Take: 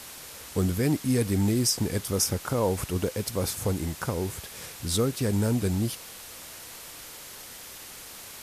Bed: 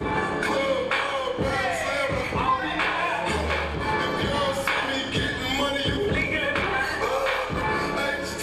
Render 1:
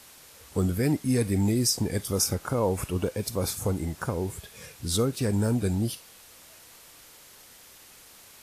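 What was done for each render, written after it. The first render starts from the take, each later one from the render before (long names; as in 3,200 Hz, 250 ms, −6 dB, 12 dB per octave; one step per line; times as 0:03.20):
noise reduction from a noise print 8 dB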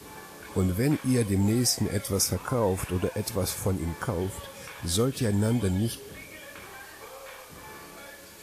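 mix in bed −20 dB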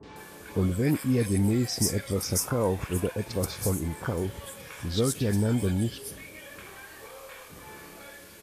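three-band delay without the direct sound lows, mids, highs 30/160 ms, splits 940/5,300 Hz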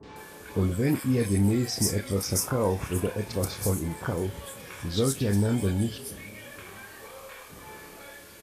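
double-tracking delay 30 ms −11 dB
repeating echo 477 ms, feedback 48%, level −23.5 dB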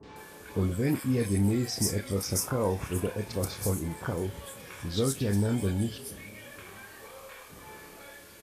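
level −2.5 dB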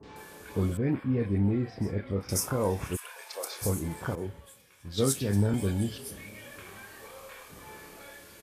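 0:00.77–0:02.29: high-frequency loss of the air 450 metres
0:02.95–0:03.61: high-pass filter 1,300 Hz → 360 Hz 24 dB per octave
0:04.15–0:05.54: multiband upward and downward expander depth 100%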